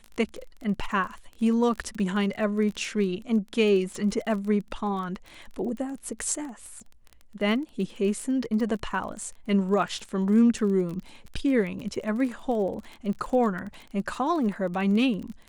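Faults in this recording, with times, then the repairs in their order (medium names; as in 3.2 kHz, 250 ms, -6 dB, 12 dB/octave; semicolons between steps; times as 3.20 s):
crackle 25 per s -33 dBFS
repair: de-click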